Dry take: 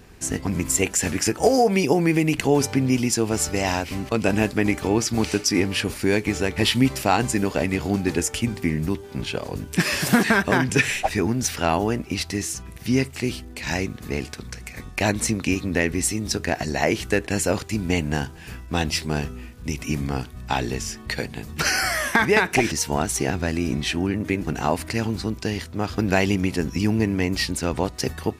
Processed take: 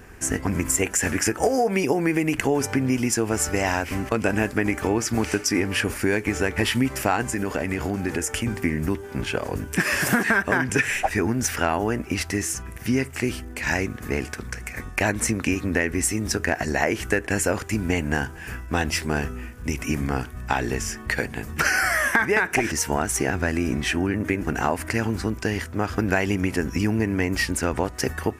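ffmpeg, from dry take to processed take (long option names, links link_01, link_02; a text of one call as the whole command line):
ffmpeg -i in.wav -filter_complex "[0:a]asettb=1/sr,asplit=3[link_01][link_02][link_03];[link_01]atrim=end=7.224[link_04];[link_02]atrim=start=7.22:end=8.46,asetpts=PTS-STARTPTS,afade=type=in:duration=0.004:curve=qsin,afade=type=out:start_time=1.236:duration=0.004:curve=qsin,acompressor=threshold=-23dB:ratio=4:attack=3.2:release=140:knee=1:detection=peak[link_05];[link_03]atrim=start=8.456[link_06];[link_04][link_05]acrossfade=duration=0.004:curve1=hsin:curve2=qsin[link_07];[link_07][link_06]acrossfade=duration=0.004:curve1=qsin:curve2=hsin,equalizer=frequency=160:width_type=o:width=0.67:gain=-5,equalizer=frequency=1600:width_type=o:width=0.67:gain=6,equalizer=frequency=4000:width_type=o:width=0.67:gain=-10,acompressor=threshold=-22dB:ratio=3,volume=3dB" out.wav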